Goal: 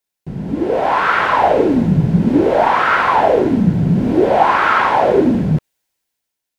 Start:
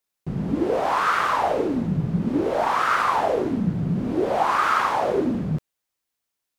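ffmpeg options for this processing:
-filter_complex "[0:a]acrossover=split=3700[s0][s1];[s1]acompressor=threshold=0.00141:ratio=4:attack=1:release=60[s2];[s0][s2]amix=inputs=2:normalize=0,bandreject=f=1200:w=5.8,dynaudnorm=f=220:g=7:m=3.76,volume=1.12"

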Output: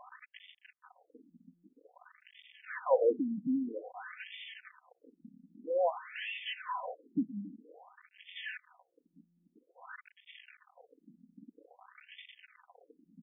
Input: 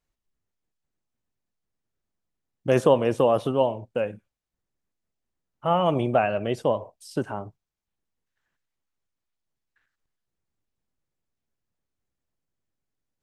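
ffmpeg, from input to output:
-filter_complex "[0:a]aeval=exprs='val(0)+0.5*0.0376*sgn(val(0))':c=same,equalizer=f=3700:t=o:w=1.6:g=7,aecho=1:1:4:0.98,acrossover=split=800[s0][s1];[s1]aeval=exprs='0.075*(abs(mod(val(0)/0.075+3,4)-2)-1)':c=same[s2];[s0][s2]amix=inputs=2:normalize=0,afftfilt=real='re*between(b*sr/1024,200*pow(2600/200,0.5+0.5*sin(2*PI*0.51*pts/sr))/1.41,200*pow(2600/200,0.5+0.5*sin(2*PI*0.51*pts/sr))*1.41)':imag='im*between(b*sr/1024,200*pow(2600/200,0.5+0.5*sin(2*PI*0.51*pts/sr))/1.41,200*pow(2600/200,0.5+0.5*sin(2*PI*0.51*pts/sr))*1.41)':win_size=1024:overlap=0.75,volume=0.422"

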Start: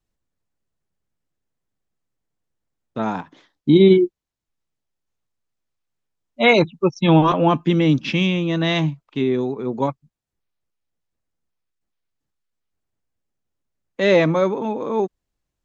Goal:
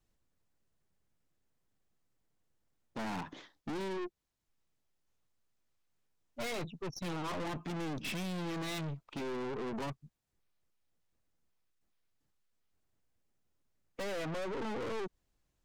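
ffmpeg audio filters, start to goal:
-af "acompressor=threshold=0.0891:ratio=20,aeval=exprs='(tanh(89.1*val(0)+0.4)-tanh(0.4))/89.1':c=same,volume=1.26"

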